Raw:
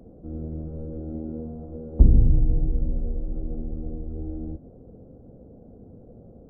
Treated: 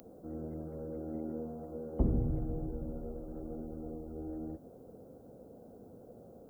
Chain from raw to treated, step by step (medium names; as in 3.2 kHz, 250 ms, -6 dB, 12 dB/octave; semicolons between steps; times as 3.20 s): tilt EQ +4.5 dB/octave; trim +2.5 dB